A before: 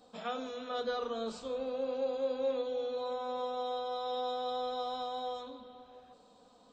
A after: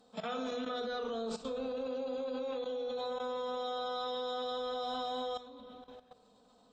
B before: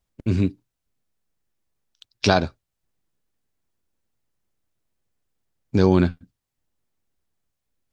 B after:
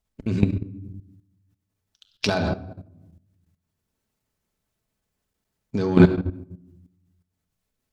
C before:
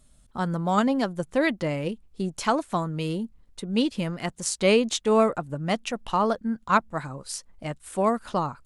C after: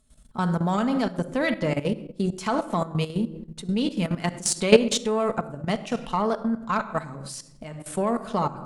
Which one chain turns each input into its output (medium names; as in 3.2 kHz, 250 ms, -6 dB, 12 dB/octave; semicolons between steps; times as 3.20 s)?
simulated room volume 2300 m³, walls furnished, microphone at 1.5 m; Chebyshev shaper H 2 -22 dB, 6 -26 dB, 8 -24 dB, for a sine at 0 dBFS; level held to a coarse grid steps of 14 dB; trim +5 dB